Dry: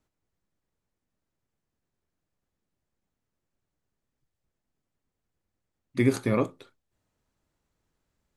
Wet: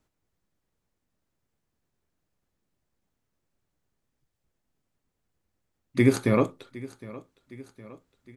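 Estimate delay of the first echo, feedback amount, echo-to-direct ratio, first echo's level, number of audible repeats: 762 ms, 56%, -17.5 dB, -19.0 dB, 3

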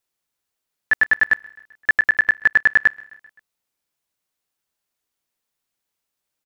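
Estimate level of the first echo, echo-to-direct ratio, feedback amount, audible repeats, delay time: -24.0 dB, -22.0 dB, 59%, 3, 130 ms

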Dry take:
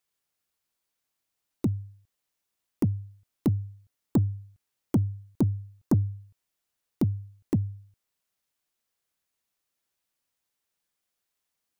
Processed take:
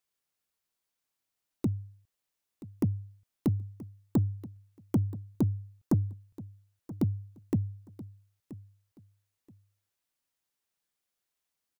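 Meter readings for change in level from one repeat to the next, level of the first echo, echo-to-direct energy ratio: -12.5 dB, -17.0 dB, -17.0 dB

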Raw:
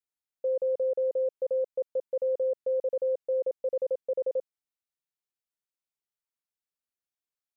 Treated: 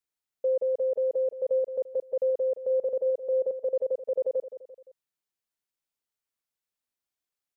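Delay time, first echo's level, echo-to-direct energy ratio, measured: 172 ms, -11.5 dB, -10.5 dB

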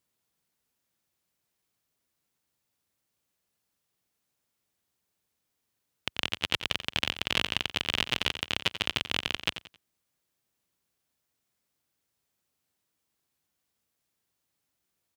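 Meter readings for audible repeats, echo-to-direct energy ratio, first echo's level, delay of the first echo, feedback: 3, -11.5 dB, -12.0 dB, 89 ms, 31%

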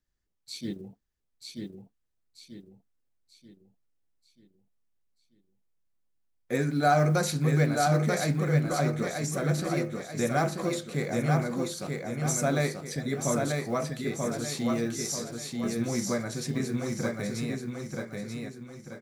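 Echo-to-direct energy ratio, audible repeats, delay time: -2.5 dB, 5, 936 ms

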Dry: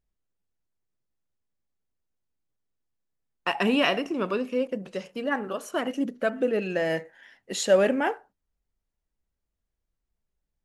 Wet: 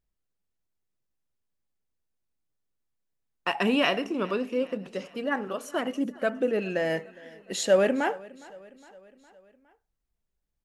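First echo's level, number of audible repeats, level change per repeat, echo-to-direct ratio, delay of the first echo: -22.0 dB, 3, -5.0 dB, -20.5 dB, 411 ms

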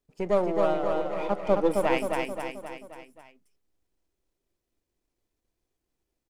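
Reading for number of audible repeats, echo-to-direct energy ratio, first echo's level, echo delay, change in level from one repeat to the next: 5, -2.0 dB, -3.5 dB, 265 ms, -5.5 dB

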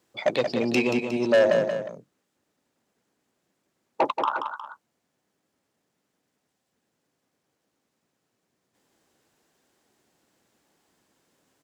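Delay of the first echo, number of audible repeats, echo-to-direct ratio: 180 ms, 2, -5.5 dB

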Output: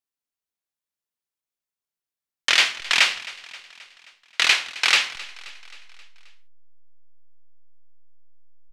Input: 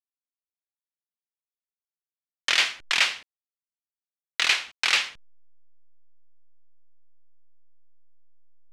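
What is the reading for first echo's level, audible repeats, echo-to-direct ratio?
-19.0 dB, 4, -17.0 dB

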